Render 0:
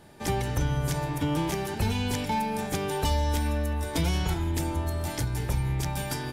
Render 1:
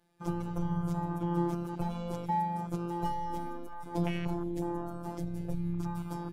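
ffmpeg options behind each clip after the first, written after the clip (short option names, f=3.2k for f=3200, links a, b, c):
-af "afftfilt=real='hypot(re,im)*cos(PI*b)':imag='0':win_size=1024:overlap=0.75,afwtdn=0.0158"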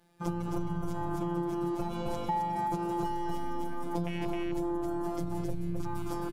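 -af "aecho=1:1:264:0.668,acompressor=threshold=-34dB:ratio=6,volume=6dB"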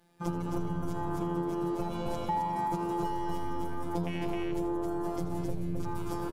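-filter_complex "[0:a]asplit=5[a][b][c][d][e];[b]adelay=81,afreqshift=91,volume=-14dB[f];[c]adelay=162,afreqshift=182,volume=-20.7dB[g];[d]adelay=243,afreqshift=273,volume=-27.5dB[h];[e]adelay=324,afreqshift=364,volume=-34.2dB[i];[a][f][g][h][i]amix=inputs=5:normalize=0"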